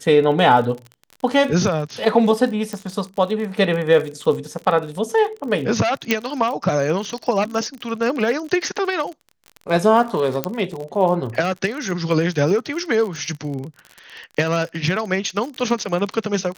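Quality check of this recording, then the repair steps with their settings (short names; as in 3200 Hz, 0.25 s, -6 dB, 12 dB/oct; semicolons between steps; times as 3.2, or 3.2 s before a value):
crackle 44/s -27 dBFS
2.73 pop -14 dBFS
6.11 pop -3 dBFS
10.44 pop -5 dBFS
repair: de-click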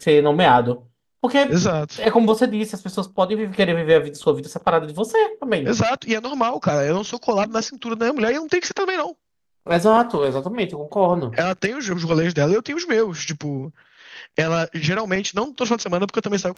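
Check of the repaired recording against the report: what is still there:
none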